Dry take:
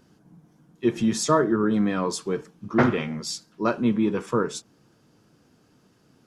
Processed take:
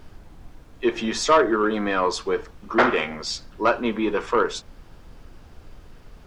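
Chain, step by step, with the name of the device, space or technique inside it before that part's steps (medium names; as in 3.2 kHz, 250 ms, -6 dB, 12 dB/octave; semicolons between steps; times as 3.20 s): aircraft cabin announcement (band-pass 490–4200 Hz; saturation -17 dBFS, distortion -15 dB; brown noise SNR 18 dB); trim +8.5 dB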